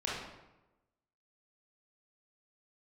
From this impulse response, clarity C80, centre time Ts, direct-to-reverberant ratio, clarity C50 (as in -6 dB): 3.5 dB, 71 ms, -6.5 dB, -1.0 dB